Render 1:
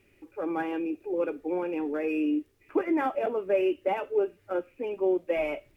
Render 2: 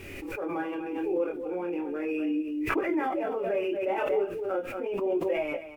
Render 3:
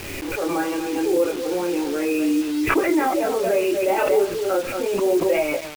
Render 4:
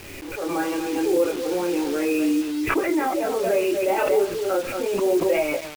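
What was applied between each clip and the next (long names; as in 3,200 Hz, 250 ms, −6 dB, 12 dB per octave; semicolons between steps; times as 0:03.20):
single-tap delay 235 ms −10.5 dB; multi-voice chorus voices 2, 0.36 Hz, delay 24 ms, depth 4.9 ms; background raised ahead of every attack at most 29 dB per second
bit reduction 7 bits; level +8.5 dB
automatic gain control gain up to 7 dB; level −7 dB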